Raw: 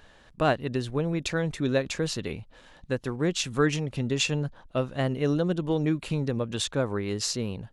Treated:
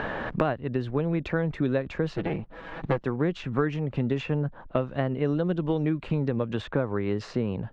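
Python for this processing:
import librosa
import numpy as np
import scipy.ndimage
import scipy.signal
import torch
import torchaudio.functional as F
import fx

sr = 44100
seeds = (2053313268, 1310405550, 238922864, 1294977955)

y = fx.lower_of_two(x, sr, delay_ms=6.1, at=(2.16, 3.02))
y = scipy.signal.sosfilt(scipy.signal.butter(2, 1900.0, 'lowpass', fs=sr, output='sos'), y)
y = fx.band_squash(y, sr, depth_pct=100)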